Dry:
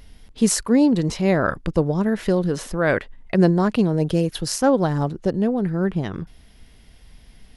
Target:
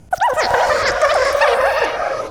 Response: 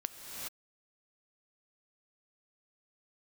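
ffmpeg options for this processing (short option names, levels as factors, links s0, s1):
-filter_complex "[0:a]lowpass=f=3100:w=0.5412,lowpass=f=3100:w=1.3066,equalizer=f=130:t=o:w=1.3:g=4,asetrate=144648,aresample=44100[s0];[1:a]atrim=start_sample=2205[s1];[s0][s1]afir=irnorm=-1:irlink=0,volume=1.26"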